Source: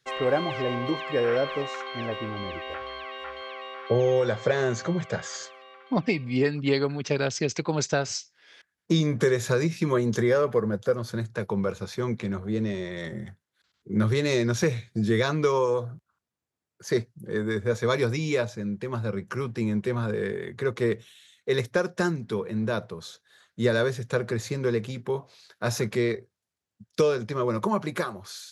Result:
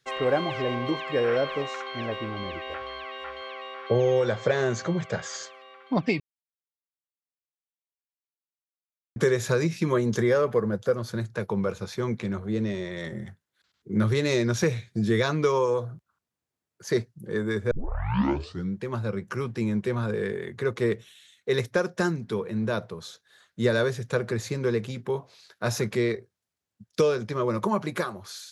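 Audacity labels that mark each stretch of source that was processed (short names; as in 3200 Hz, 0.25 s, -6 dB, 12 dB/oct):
6.200000	9.160000	mute
17.710000	17.710000	tape start 1.05 s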